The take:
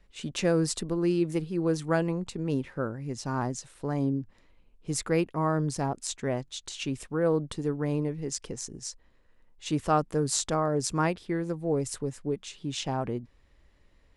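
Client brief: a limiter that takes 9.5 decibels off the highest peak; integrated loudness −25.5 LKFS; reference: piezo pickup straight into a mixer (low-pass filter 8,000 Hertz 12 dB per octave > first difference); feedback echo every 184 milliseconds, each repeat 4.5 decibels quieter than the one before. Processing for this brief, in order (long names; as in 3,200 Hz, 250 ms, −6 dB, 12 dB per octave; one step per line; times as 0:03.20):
brickwall limiter −19.5 dBFS
low-pass filter 8,000 Hz 12 dB per octave
first difference
repeating echo 184 ms, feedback 60%, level −4.5 dB
level +16.5 dB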